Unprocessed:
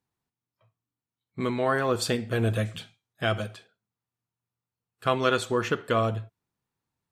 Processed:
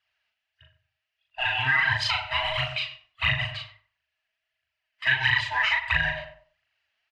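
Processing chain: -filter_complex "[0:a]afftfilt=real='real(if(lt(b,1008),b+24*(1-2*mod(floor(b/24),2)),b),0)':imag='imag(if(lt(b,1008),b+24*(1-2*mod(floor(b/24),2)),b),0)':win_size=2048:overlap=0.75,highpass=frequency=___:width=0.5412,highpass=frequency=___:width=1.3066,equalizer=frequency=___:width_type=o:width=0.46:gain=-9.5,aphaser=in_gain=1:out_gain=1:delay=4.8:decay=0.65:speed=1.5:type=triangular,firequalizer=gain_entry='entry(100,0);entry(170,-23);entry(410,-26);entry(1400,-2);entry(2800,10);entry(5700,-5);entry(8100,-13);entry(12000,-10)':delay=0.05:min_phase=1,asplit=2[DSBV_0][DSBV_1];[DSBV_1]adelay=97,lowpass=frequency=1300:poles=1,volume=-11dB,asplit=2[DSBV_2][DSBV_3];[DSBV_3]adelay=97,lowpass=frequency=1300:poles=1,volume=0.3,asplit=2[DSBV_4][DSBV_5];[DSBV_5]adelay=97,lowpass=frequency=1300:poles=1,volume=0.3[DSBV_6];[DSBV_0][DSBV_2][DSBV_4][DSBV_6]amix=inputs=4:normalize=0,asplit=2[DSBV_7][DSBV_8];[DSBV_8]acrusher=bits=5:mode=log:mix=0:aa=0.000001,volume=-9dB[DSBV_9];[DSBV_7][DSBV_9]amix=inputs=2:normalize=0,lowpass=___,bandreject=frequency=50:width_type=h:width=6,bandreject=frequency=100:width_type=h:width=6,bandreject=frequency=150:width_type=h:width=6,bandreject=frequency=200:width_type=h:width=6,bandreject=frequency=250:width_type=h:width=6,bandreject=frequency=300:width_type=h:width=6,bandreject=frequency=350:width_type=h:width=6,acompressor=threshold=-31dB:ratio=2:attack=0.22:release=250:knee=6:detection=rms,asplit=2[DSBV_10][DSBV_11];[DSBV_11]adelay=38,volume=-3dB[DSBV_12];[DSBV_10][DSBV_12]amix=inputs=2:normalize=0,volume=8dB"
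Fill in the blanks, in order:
73, 73, 3600, 4900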